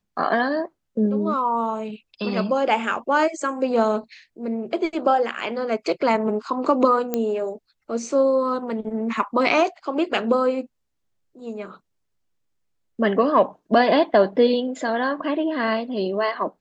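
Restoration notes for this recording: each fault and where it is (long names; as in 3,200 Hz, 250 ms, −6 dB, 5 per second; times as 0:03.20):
0:07.14: click −10 dBFS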